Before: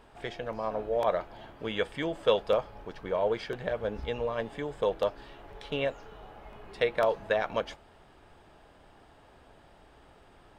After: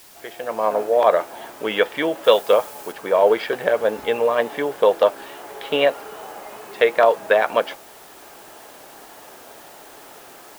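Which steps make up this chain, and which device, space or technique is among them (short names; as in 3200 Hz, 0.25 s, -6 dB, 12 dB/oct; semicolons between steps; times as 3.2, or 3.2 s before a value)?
dictaphone (BPF 330–3400 Hz; AGC gain up to 14.5 dB; wow and flutter; white noise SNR 26 dB); 2.24–2.92 high shelf 4700 Hz +8 dB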